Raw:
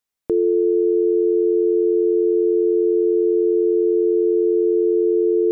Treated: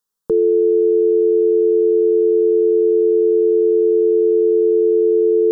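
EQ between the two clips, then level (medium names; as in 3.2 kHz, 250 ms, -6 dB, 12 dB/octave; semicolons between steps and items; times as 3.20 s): static phaser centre 450 Hz, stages 8; +5.0 dB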